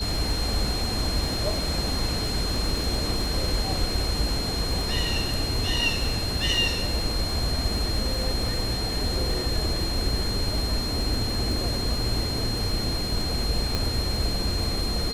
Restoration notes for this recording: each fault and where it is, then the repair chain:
crackle 39/s -31 dBFS
tone 4200 Hz -30 dBFS
13.75 pop -11 dBFS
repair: de-click; notch 4200 Hz, Q 30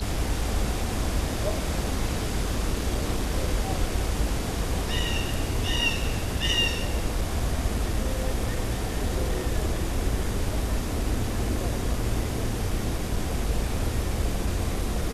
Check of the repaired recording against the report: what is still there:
13.75 pop

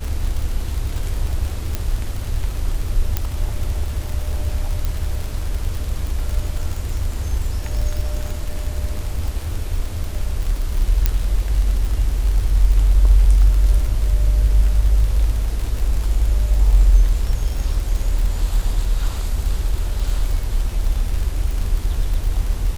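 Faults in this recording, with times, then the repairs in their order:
crackle 51/s -23 dBFS
1.75 pop -8 dBFS
3.17 pop -5 dBFS
4.85 pop
11.06 pop -2 dBFS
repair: de-click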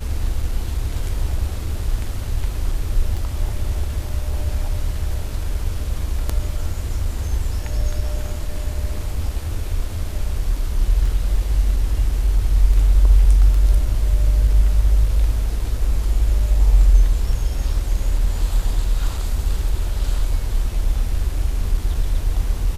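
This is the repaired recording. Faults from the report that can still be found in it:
1.75 pop
3.17 pop
11.06 pop

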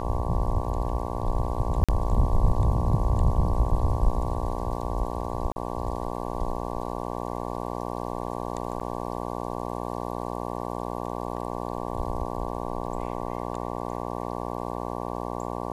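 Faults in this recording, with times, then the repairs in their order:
buzz 60 Hz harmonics 19 -32 dBFS
1.84–1.89 gap 46 ms
5.52–5.56 gap 40 ms
8.8–8.81 gap 6.7 ms
12.87 gap 2.7 ms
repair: de-hum 60 Hz, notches 19; interpolate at 1.84, 46 ms; interpolate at 5.52, 40 ms; interpolate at 8.8, 6.7 ms; interpolate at 12.87, 2.7 ms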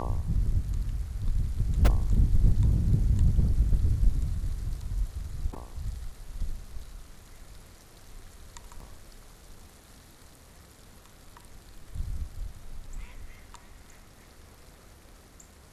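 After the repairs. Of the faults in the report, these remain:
none

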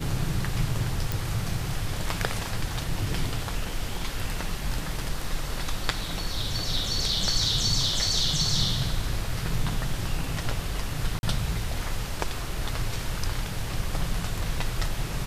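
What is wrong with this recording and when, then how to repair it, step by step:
1.12 pop
11.19–11.23 gap 41 ms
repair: de-click; interpolate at 11.19, 41 ms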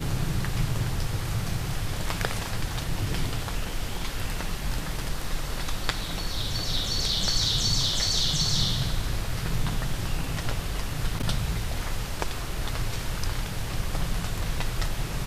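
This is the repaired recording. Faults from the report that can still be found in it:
none

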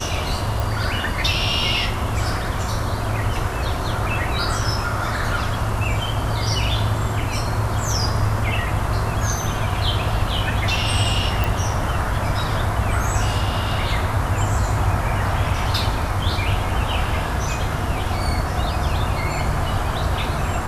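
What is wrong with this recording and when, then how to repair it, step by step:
0.6 pop
11.44 pop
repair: de-click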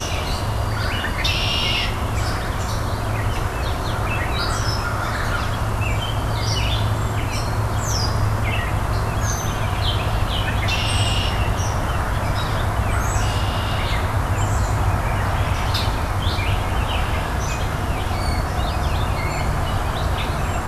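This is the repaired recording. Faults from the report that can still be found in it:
none

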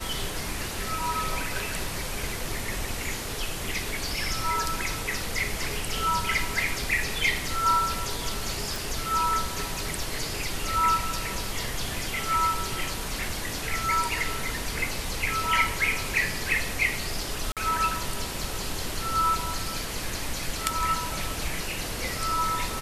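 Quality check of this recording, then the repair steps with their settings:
8.76 pop
17.52–17.57 gap 47 ms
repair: de-click; interpolate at 17.52, 47 ms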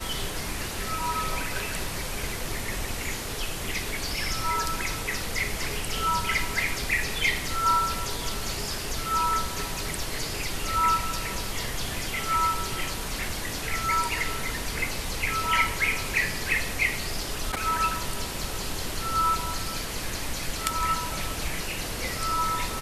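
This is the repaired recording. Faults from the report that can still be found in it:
none

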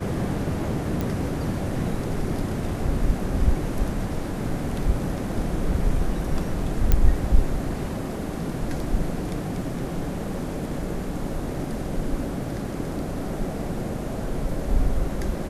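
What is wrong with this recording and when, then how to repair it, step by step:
1.01 pop
6.92 pop -6 dBFS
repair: de-click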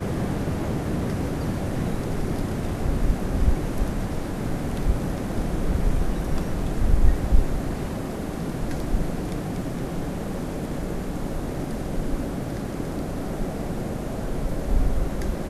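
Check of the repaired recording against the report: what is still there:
6.92 pop

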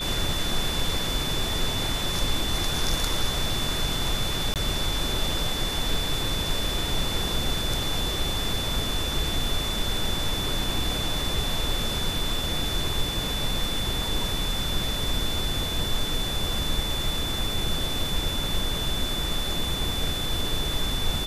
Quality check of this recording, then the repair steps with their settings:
tone 3500 Hz -30 dBFS
4.54–4.56 gap 18 ms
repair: notch 3500 Hz, Q 30; interpolate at 4.54, 18 ms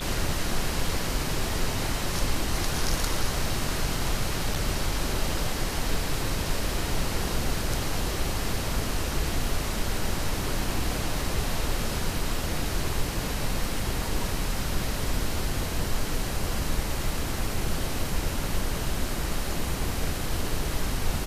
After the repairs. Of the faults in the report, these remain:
none

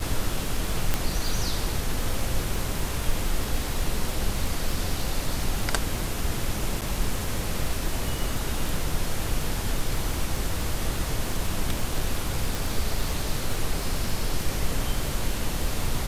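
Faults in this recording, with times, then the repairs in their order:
crackle 46/s -28 dBFS
0.94 pop -8 dBFS
6.81–6.82 gap 7.6 ms
12.55 pop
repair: de-click; interpolate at 6.81, 7.6 ms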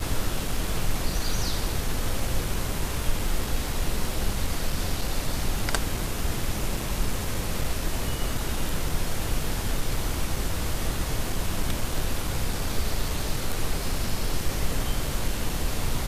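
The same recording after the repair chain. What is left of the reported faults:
0.94 pop

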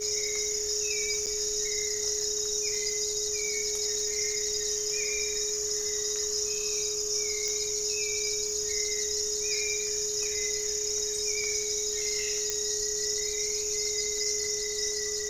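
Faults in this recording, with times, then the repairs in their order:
crackle 40/s -37 dBFS
tone 420 Hz -35 dBFS
1.26–1.27 gap 8.1 ms
7.48 pop -18 dBFS
12.5 pop -13 dBFS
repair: de-click; notch 420 Hz, Q 30; interpolate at 1.26, 8.1 ms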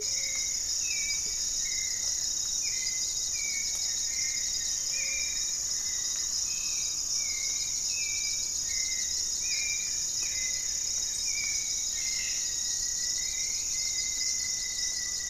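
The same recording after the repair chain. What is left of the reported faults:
none

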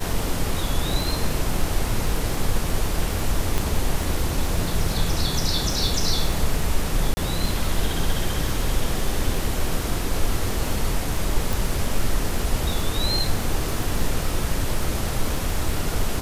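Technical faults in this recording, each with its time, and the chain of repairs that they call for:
crackle 50/s -27 dBFS
3.58 pop
7.14–7.17 gap 30 ms
11.53 pop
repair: de-click; interpolate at 7.14, 30 ms

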